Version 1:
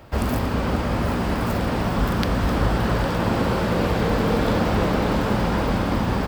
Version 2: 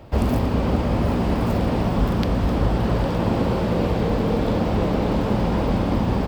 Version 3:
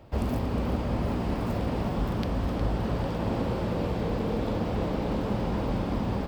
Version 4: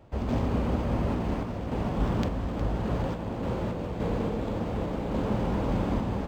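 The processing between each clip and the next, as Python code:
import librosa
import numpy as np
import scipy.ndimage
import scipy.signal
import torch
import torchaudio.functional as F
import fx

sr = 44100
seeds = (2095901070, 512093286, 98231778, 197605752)

y1 = fx.peak_eq(x, sr, hz=1500.0, db=-7.5, octaves=1.1)
y1 = fx.rider(y1, sr, range_db=10, speed_s=0.5)
y1 = fx.high_shelf(y1, sr, hz=4300.0, db=-9.5)
y1 = F.gain(torch.from_numpy(y1), 1.5).numpy()
y2 = y1 + 10.0 ** (-10.0 / 20.0) * np.pad(y1, (int(361 * sr / 1000.0), 0))[:len(y1)]
y2 = F.gain(torch.from_numpy(y2), -8.0).numpy()
y3 = fx.vibrato(y2, sr, rate_hz=5.5, depth_cents=42.0)
y3 = fx.tremolo_random(y3, sr, seeds[0], hz=3.5, depth_pct=55)
y3 = np.interp(np.arange(len(y3)), np.arange(len(y3))[::4], y3[::4])
y3 = F.gain(torch.from_numpy(y3), 2.0).numpy()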